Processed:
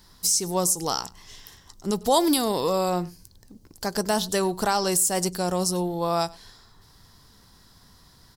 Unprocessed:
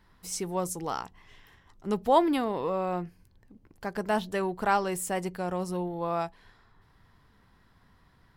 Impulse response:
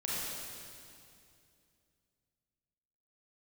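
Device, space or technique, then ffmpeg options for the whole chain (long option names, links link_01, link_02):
over-bright horn tweeter: -filter_complex "[0:a]highshelf=frequency=3500:width_type=q:width=1.5:gain=13.5,alimiter=limit=-17.5dB:level=0:latency=1:release=135,aecho=1:1:99:0.0708,asettb=1/sr,asplit=3[link_01][link_02][link_03];[link_01]atrim=end=2.034[link_04];[link_02]atrim=start=2.03:end=2.9,asetpts=PTS-STARTPTS,afade=type=in:duration=0.004:curve=qsin,afade=type=out:start_time=0.866:duration=0.004:curve=qsin,adynamicequalizer=threshold=0.00398:dfrequency=3900:dqfactor=0.7:tfrequency=3900:tqfactor=0.7:attack=5:release=100:ratio=0.375:range=4:mode=boostabove:tftype=highshelf[link_05];[link_03]atrim=start=2.896[link_06];[link_04][link_05]acrossfade=duration=0.004:curve1=hsin:curve2=qsin[link_07];[link_07][link_06]acrossfade=duration=0.004:curve1=qsin:curve2=hsin,volume=6dB"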